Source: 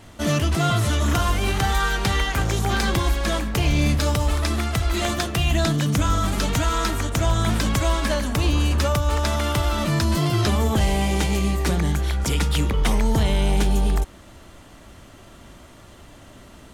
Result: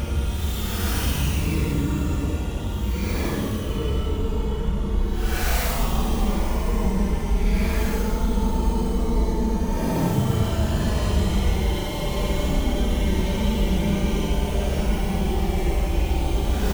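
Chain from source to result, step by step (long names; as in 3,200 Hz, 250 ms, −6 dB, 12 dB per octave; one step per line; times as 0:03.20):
stylus tracing distortion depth 0.44 ms
echo with shifted repeats 154 ms, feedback 47%, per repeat +140 Hz, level −10 dB
extreme stretch with random phases 15×, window 0.05 s, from 0:12.49
level −4 dB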